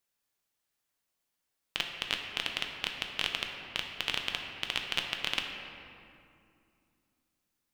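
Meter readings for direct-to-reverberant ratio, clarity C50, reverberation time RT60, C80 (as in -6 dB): 2.0 dB, 4.0 dB, 2.4 s, 5.0 dB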